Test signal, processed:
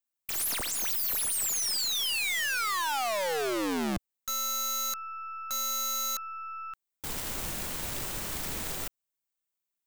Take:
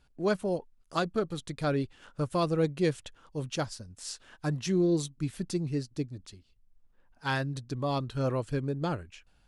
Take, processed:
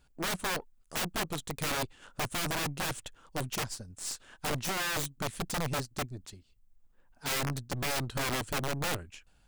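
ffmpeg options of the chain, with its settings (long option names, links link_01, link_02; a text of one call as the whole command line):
ffmpeg -i in.wav -af "aexciter=amount=2:drive=3.2:freq=7000,aeval=exprs='(mod(22.4*val(0)+1,2)-1)/22.4':channel_layout=same,aeval=exprs='0.0447*(cos(1*acos(clip(val(0)/0.0447,-1,1)))-cos(1*PI/2))+0.00447*(cos(6*acos(clip(val(0)/0.0447,-1,1)))-cos(6*PI/2))+0.000316*(cos(8*acos(clip(val(0)/0.0447,-1,1)))-cos(8*PI/2))':channel_layout=same" out.wav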